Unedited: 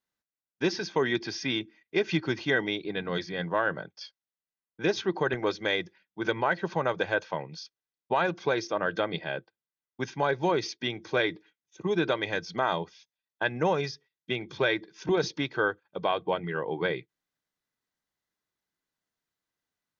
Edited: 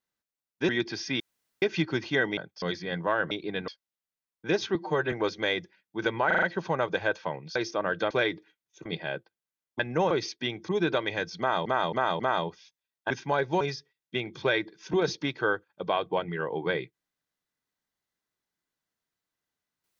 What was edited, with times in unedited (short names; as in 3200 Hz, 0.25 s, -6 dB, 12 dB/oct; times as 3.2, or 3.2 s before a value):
0.69–1.04 cut
1.55–1.97 room tone
2.72–3.09 swap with 3.78–4.03
5.1–5.35 stretch 1.5×
6.49 stutter 0.04 s, 5 plays
7.62–8.52 cut
10.01–10.51 swap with 13.45–13.76
11.09–11.84 move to 9.07
12.54–12.81 loop, 4 plays